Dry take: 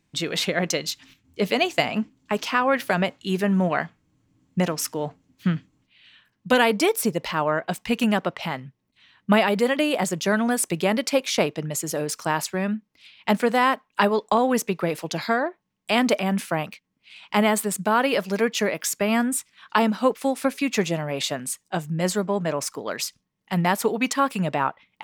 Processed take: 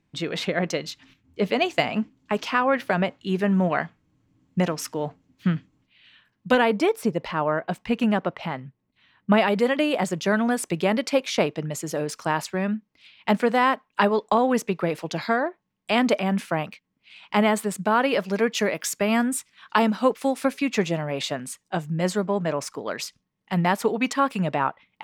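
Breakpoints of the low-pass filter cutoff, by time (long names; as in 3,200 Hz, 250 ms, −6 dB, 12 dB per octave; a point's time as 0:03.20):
low-pass filter 6 dB per octave
2,300 Hz
from 0:01.62 4,000 Hz
from 0:02.65 2,400 Hz
from 0:03.42 4,300 Hz
from 0:06.55 1,800 Hz
from 0:09.38 3,900 Hz
from 0:18.50 8,300 Hz
from 0:20.55 4,100 Hz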